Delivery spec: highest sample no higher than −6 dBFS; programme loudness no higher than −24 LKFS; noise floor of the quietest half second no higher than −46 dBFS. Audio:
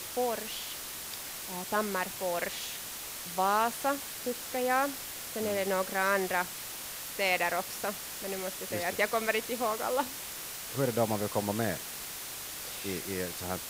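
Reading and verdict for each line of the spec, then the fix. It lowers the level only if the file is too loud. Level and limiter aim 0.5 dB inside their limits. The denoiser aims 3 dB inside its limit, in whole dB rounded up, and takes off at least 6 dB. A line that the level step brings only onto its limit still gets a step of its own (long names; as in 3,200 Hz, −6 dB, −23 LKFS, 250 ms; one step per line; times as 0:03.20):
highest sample −13.0 dBFS: in spec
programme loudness −32.5 LKFS: in spec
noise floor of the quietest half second −41 dBFS: out of spec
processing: broadband denoise 8 dB, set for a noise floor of −41 dBFS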